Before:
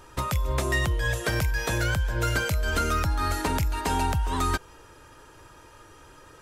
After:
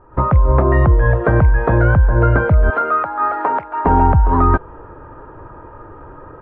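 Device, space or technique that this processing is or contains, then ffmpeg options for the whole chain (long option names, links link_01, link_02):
action camera in a waterproof case: -filter_complex "[0:a]asettb=1/sr,asplit=3[link_01][link_02][link_03];[link_01]atrim=end=2.704[link_04];[link_02]atrim=start=2.7:end=3.85,asetpts=PTS-STARTPTS,afade=type=in:duration=0.004:curve=qsin,afade=type=out:start_time=1.146:duration=0.004:curve=qsin,highpass=650[link_05];[link_03]atrim=start=3.846[link_06];[link_04][link_05]acrossfade=duration=0.004:curve1=hsin:curve2=qsin[link_07];[link_07][link_06]acrossfade=duration=0.004:curve1=qsin:curve2=hsin,lowpass=frequency=1300:width=0.5412,lowpass=frequency=1300:width=1.3066,dynaudnorm=framelen=100:gausssize=3:maxgain=13dB,volume=2dB" -ar 24000 -c:a aac -b:a 64k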